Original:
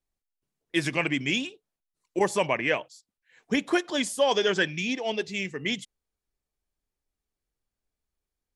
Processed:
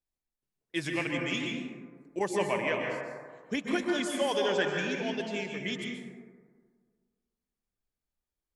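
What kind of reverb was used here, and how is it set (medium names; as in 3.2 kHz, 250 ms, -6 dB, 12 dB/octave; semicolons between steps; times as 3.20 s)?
plate-style reverb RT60 1.7 s, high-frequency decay 0.3×, pre-delay 115 ms, DRR 1 dB; trim -7 dB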